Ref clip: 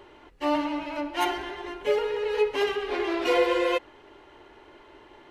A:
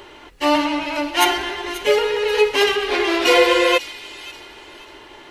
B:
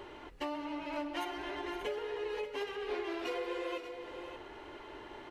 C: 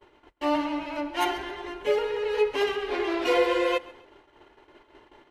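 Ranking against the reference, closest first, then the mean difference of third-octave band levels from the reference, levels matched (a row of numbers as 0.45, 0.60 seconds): C, A, B; 1.5, 4.0, 7.0 decibels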